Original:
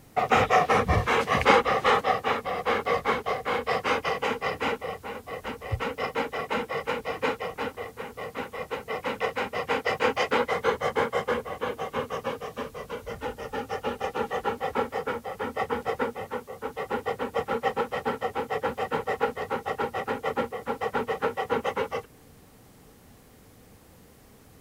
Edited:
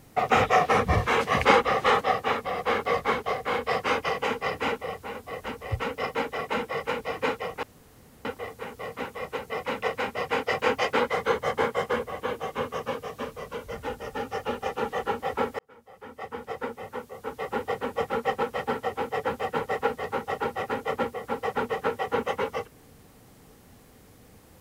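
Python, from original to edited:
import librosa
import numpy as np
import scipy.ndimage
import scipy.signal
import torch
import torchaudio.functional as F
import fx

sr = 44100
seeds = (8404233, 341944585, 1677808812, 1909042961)

y = fx.edit(x, sr, fx.insert_room_tone(at_s=7.63, length_s=0.62),
    fx.fade_in_span(start_s=14.97, length_s=1.86), tone=tone)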